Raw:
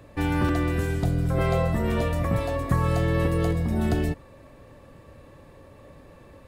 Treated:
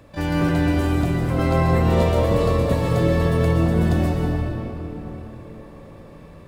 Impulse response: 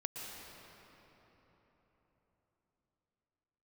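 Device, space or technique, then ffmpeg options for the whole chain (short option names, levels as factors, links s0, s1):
shimmer-style reverb: -filter_complex "[0:a]asettb=1/sr,asplit=3[s0][s1][s2];[s0]atrim=end=1.924[s3];[s1]atrim=start=1.92:end=2.89,asetpts=PTS-STARTPTS,afade=t=in:d=0.004:c=qsin,afade=t=out:st=0.966:d=0.004:c=qsin,equalizer=f=500:t=o:w=1:g=10,equalizer=f=1000:t=o:w=1:g=-12,equalizer=f=4000:t=o:w=1:g=7[s4];[s2]atrim=start=2.886[s5];[s3][s4]acrossfade=d=0.004:c1=hsin:c2=qsin[s6];[s6][s5]acrossfade=d=0.004:c1=qsin:c2=hsin,asplit=2[s7][s8];[s8]asetrate=88200,aresample=44100,atempo=0.5,volume=0.316[s9];[s7][s9]amix=inputs=2:normalize=0[s10];[1:a]atrim=start_sample=2205[s11];[s10][s11]afir=irnorm=-1:irlink=0,volume=1.41"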